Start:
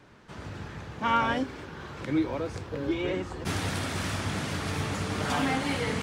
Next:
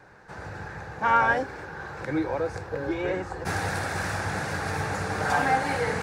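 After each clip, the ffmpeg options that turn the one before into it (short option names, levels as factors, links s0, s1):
-af "equalizer=f=250:t=o:w=0.33:g=-9,equalizer=f=500:t=o:w=0.33:g=6,equalizer=f=800:t=o:w=0.33:g=10,equalizer=f=1600:t=o:w=0.33:g=10,equalizer=f=3150:t=o:w=0.33:g=-10"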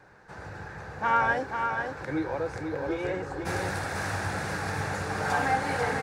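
-af "aecho=1:1:491:0.531,volume=0.708"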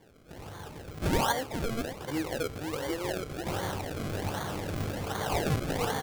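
-af "acrusher=samples=33:mix=1:aa=0.000001:lfo=1:lforange=33:lforate=1.3,volume=0.75"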